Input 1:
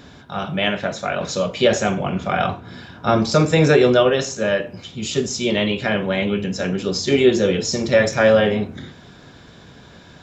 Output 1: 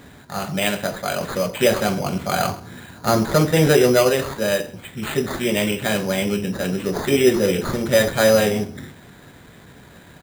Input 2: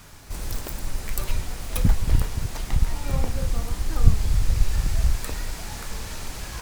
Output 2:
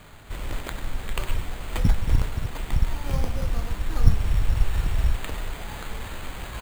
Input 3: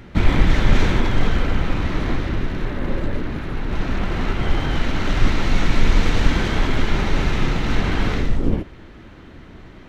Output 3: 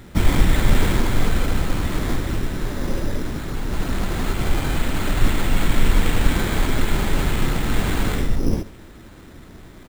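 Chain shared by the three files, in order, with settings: on a send: delay 132 ms -21.5 dB; on the sum: careless resampling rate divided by 8×, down none, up hold; trim -1 dB

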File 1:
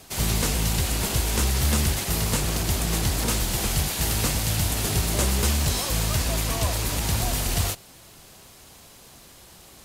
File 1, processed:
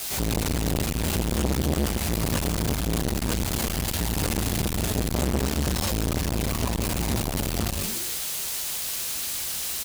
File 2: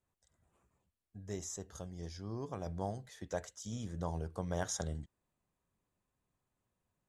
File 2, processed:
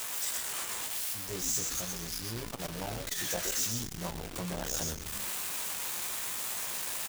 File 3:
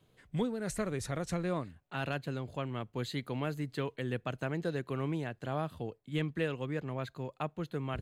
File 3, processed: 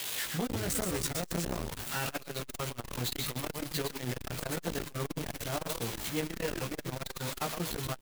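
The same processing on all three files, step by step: zero-crossing glitches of -19.5 dBFS; treble shelf 5.1 kHz -10.5 dB; doubling 17 ms -2.5 dB; on a send: frequency-shifting echo 123 ms, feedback 36%, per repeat -140 Hz, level -4.5 dB; on the sum: transformer saturation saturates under 530 Hz

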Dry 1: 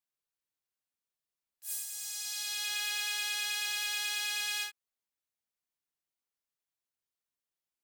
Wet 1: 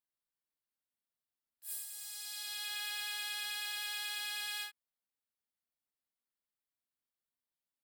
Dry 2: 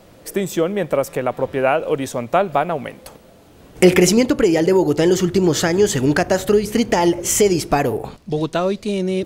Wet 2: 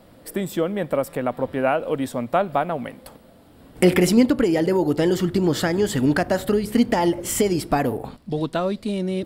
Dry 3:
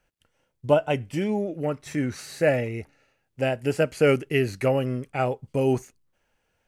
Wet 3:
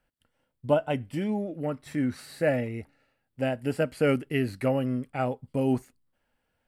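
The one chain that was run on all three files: graphic EQ with 31 bands 250 Hz +6 dB, 400 Hz -4 dB, 2.5 kHz -4 dB, 6.3 kHz -12 dB; trim -3.5 dB

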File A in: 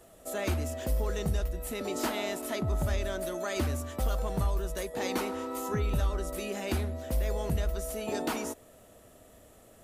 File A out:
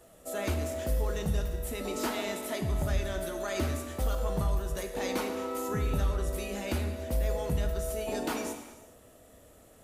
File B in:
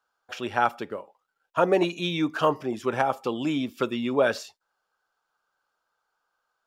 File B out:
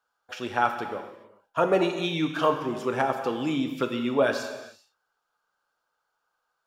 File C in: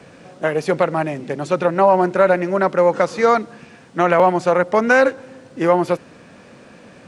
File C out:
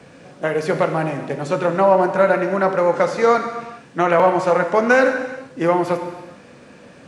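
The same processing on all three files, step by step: gated-style reverb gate 460 ms falling, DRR 5 dB; trim -1.5 dB

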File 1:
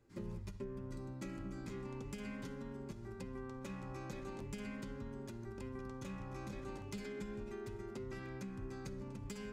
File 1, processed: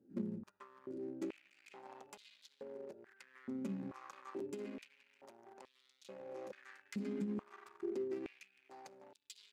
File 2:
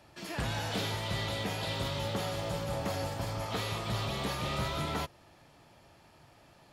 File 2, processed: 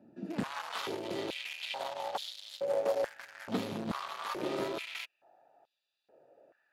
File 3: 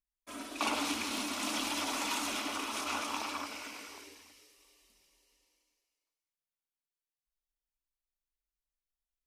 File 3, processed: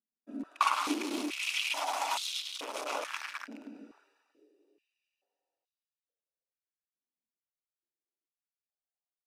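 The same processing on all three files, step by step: local Wiener filter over 41 samples; step-sequenced high-pass 2.3 Hz 230–3700 Hz

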